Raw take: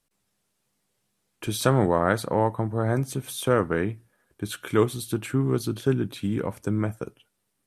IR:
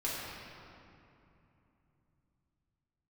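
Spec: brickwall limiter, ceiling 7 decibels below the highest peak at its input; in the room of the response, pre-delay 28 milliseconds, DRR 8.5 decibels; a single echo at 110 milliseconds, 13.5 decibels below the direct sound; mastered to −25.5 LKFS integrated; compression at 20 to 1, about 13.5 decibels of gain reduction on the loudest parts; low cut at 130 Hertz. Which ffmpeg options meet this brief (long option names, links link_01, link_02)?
-filter_complex "[0:a]highpass=130,acompressor=threshold=-29dB:ratio=20,alimiter=level_in=0.5dB:limit=-24dB:level=0:latency=1,volume=-0.5dB,aecho=1:1:110:0.211,asplit=2[link_01][link_02];[1:a]atrim=start_sample=2205,adelay=28[link_03];[link_02][link_03]afir=irnorm=-1:irlink=0,volume=-14dB[link_04];[link_01][link_04]amix=inputs=2:normalize=0,volume=11dB"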